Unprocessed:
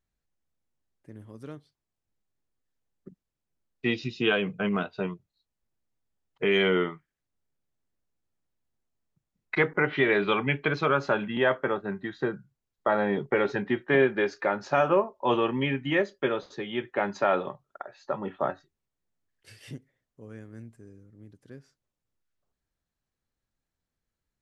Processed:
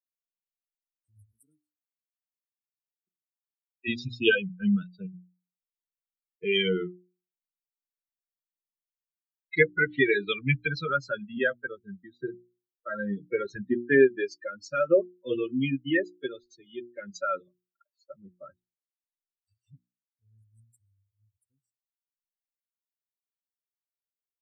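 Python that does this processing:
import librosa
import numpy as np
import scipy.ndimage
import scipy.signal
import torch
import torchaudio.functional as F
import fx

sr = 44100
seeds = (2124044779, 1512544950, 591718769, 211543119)

y = fx.highpass(x, sr, hz=fx.line((1.31, 120.0), (3.87, 320.0)), slope=12, at=(1.31, 3.87), fade=0.02)
y = fx.lowpass(y, sr, hz=3200.0, slope=12, at=(18.21, 20.39))
y = fx.bin_expand(y, sr, power=3.0)
y = scipy.signal.sosfilt(scipy.signal.ellip(3, 1.0, 40, [550.0, 1400.0], 'bandstop', fs=sr, output='sos'), y)
y = fx.hum_notches(y, sr, base_hz=60, count=6)
y = y * 10.0 ** (8.0 / 20.0)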